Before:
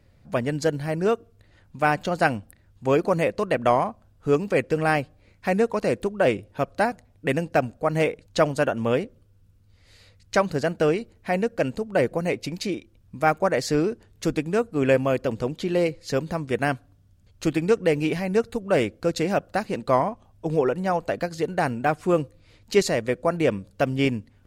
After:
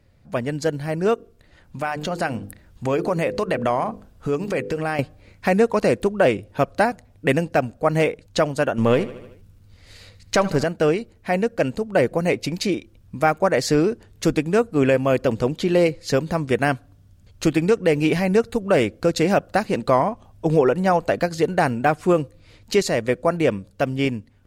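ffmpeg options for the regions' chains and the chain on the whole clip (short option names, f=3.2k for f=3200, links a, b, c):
-filter_complex "[0:a]asettb=1/sr,asplit=3[a][b][c];[a]atrim=end=1.144[d];[b]atrim=start=1.14:end=4.99,asetpts=PTS-STARTPTS,afade=t=in:d=0.004:c=qsin,afade=t=out:st=3.846:d=0.004:c=qsin,bandreject=f=50:t=h:w=6,bandreject=f=100:t=h:w=6,bandreject=f=150:t=h:w=6,bandreject=f=200:t=h:w=6,bandreject=f=250:t=h:w=6,bandreject=f=300:t=h:w=6,bandreject=f=350:t=h:w=6,bandreject=f=400:t=h:w=6,bandreject=f=450:t=h:w=6,bandreject=f=500:t=h:w=6,acompressor=threshold=-33dB:ratio=2.5:attack=3.2:release=140:knee=1:detection=peak[e];[c]atrim=start=4.986[f];[d][e]acrossfade=d=0.004:c1=hsin:c2=qsin[g];[g][f]acrossfade=d=0.004:c1=qsin:c2=hsin,asettb=1/sr,asplit=3[h][i][j];[h]atrim=end=8.784[k];[i]atrim=start=8.78:end=10.64,asetpts=PTS-STARTPTS,afade=t=in:d=0.004:c=qsin,afade=t=out:st=1.856:d=0.004:c=qsin,aeval=exprs='if(lt(val(0),0),0.708*val(0),val(0))':c=same,acontrast=77,aecho=1:1:76|152|228|304|380:0.133|0.0747|0.0418|0.0234|0.0131,atrim=end_sample=82026[l];[j]atrim=start=10.636[m];[k][l]acrossfade=d=0.004:c1=hsin:c2=qsin[n];[n][m]acrossfade=d=0.004:c1=qsin:c2=hsin,dynaudnorm=f=340:g=9:m=11.5dB,alimiter=limit=-6.5dB:level=0:latency=1:release=314"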